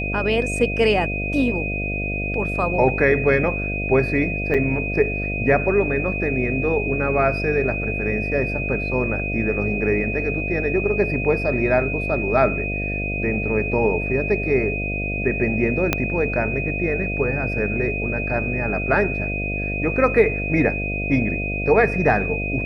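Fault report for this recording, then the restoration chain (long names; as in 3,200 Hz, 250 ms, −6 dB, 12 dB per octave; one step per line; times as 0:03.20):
mains buzz 50 Hz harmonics 14 −27 dBFS
whistle 2,500 Hz −26 dBFS
0:04.54–0:04.55: drop-out 5.5 ms
0:15.93: click −3 dBFS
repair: click removal
hum removal 50 Hz, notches 14
notch filter 2,500 Hz, Q 30
repair the gap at 0:04.54, 5.5 ms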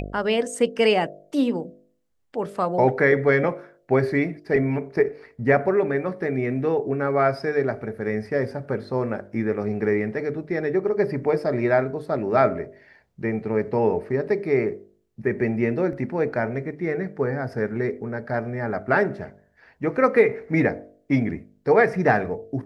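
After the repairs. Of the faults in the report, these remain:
0:15.93: click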